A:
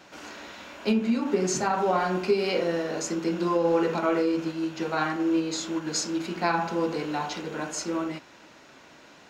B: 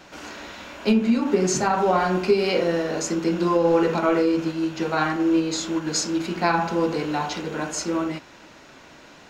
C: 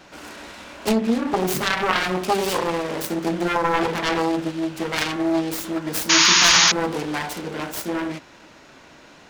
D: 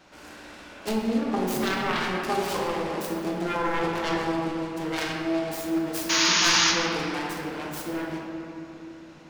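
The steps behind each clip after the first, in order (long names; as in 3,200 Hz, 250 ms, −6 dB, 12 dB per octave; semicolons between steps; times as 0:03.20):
low-shelf EQ 71 Hz +11 dB; level +4 dB
phase distortion by the signal itself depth 0.95 ms; sound drawn into the spectrogram noise, 0:06.09–0:06.72, 880–6,900 Hz −15 dBFS
rectangular room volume 140 cubic metres, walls hard, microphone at 0.47 metres; level −8.5 dB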